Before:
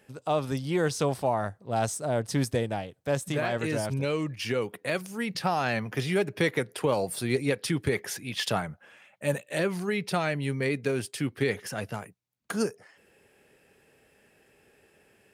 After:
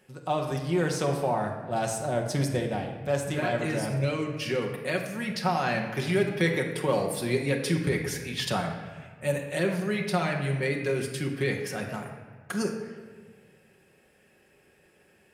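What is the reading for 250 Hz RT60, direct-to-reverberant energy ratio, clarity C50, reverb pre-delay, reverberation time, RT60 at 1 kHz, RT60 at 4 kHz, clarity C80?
2.0 s, 1.0 dB, 5.5 dB, 5 ms, 1.5 s, 1.4 s, 1.1 s, 7.5 dB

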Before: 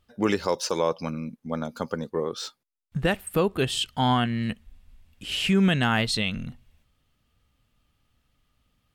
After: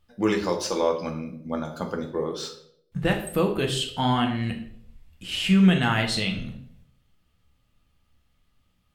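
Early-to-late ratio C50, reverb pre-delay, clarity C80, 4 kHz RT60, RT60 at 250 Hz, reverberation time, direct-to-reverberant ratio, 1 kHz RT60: 9.0 dB, 6 ms, 12.5 dB, 0.50 s, 0.70 s, 0.70 s, 2.0 dB, 0.55 s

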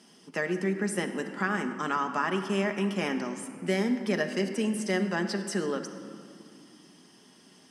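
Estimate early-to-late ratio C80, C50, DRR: 9.0 dB, 8.0 dB, 4.5 dB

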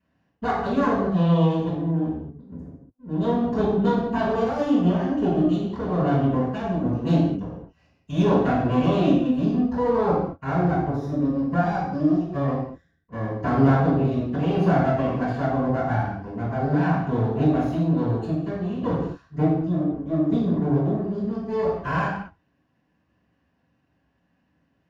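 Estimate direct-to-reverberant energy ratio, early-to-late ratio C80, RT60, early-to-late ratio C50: -14.0 dB, 3.5 dB, not exponential, 0.5 dB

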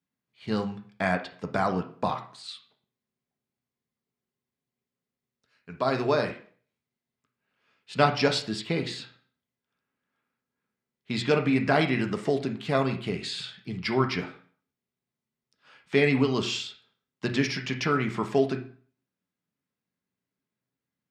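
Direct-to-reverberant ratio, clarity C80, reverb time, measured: 3.5 dB, 15.5 dB, 0.50 s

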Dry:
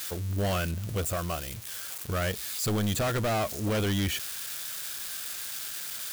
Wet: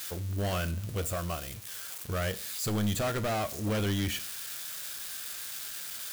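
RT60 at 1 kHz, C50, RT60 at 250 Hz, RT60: 0.45 s, 18.5 dB, 0.45 s, 0.45 s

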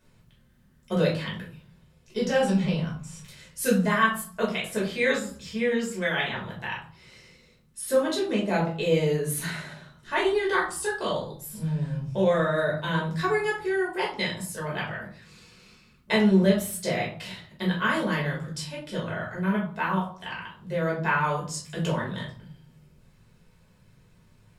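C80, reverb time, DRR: 11.5 dB, 0.45 s, -5.0 dB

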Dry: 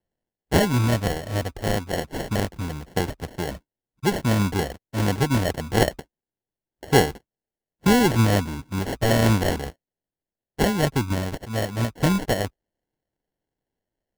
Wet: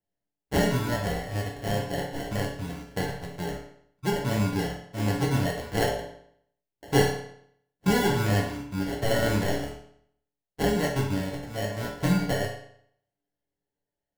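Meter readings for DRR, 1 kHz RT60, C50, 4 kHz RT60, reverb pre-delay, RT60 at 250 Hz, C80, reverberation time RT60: -2.5 dB, 0.65 s, 4.5 dB, 0.60 s, 7 ms, 0.65 s, 8.0 dB, 0.65 s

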